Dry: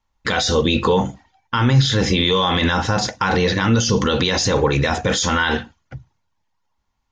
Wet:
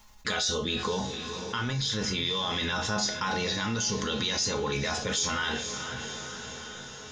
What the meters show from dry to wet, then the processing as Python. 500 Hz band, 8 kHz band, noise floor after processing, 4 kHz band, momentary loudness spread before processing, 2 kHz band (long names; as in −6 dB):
−13.5 dB, −4.5 dB, −44 dBFS, −7.5 dB, 5 LU, −10.0 dB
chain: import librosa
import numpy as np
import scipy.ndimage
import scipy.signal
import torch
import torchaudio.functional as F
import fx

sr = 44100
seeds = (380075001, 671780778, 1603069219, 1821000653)

y = fx.rider(x, sr, range_db=10, speed_s=0.5)
y = fx.high_shelf(y, sr, hz=3800.0, db=12.0)
y = fx.comb_fb(y, sr, f0_hz=210.0, decay_s=0.27, harmonics='all', damping=0.0, mix_pct=80)
y = fx.echo_diffused(y, sr, ms=501, feedback_pct=46, wet_db=-13.5)
y = fx.env_flatten(y, sr, amount_pct=50)
y = y * librosa.db_to_amplitude(-6.5)